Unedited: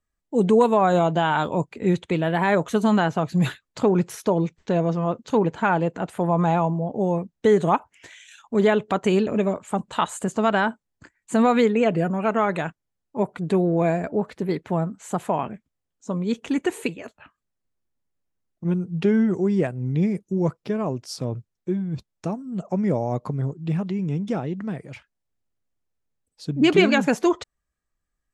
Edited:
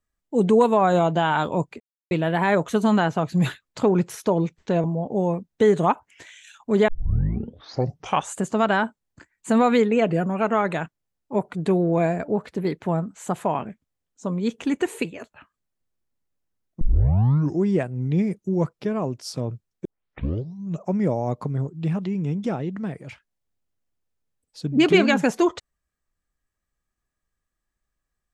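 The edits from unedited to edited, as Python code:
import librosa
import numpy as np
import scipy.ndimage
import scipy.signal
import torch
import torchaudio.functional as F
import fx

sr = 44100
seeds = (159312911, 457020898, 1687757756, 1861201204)

y = fx.edit(x, sr, fx.silence(start_s=1.8, length_s=0.31),
    fx.cut(start_s=4.84, length_s=1.84),
    fx.tape_start(start_s=8.72, length_s=1.47),
    fx.tape_start(start_s=18.65, length_s=0.82),
    fx.tape_start(start_s=21.69, length_s=0.99), tone=tone)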